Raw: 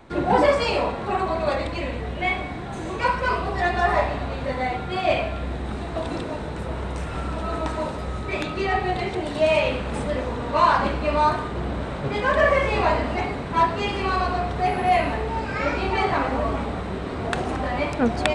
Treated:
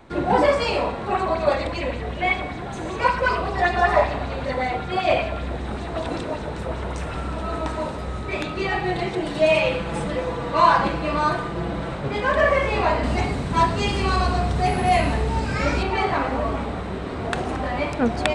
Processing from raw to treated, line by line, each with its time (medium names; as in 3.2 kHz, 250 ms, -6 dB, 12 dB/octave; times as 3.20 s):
1.11–7.15 s: sweeping bell 5.2 Hz 470–6900 Hz +7 dB
8.61–11.95 s: comb 6 ms
13.03–15.83 s: tone controls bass +7 dB, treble +10 dB